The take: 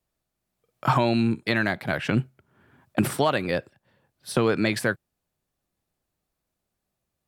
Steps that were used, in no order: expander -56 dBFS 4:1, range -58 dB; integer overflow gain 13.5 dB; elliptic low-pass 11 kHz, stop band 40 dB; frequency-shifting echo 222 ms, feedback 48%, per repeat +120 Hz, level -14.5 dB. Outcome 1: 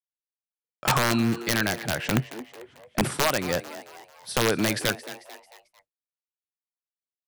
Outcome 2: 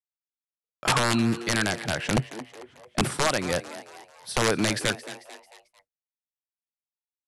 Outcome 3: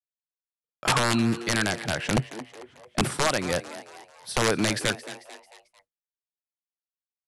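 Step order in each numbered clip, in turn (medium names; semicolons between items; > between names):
elliptic low-pass > integer overflow > frequency-shifting echo > expander; integer overflow > elliptic low-pass > frequency-shifting echo > expander; integer overflow > frequency-shifting echo > expander > elliptic low-pass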